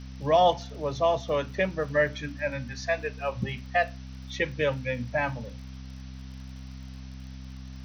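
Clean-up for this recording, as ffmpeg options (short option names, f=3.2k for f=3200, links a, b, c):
-af "adeclick=t=4,bandreject=f=65.2:t=h:w=4,bandreject=f=130.4:t=h:w=4,bandreject=f=195.6:t=h:w=4,bandreject=f=260.8:t=h:w=4,afftdn=nr=30:nf=-42"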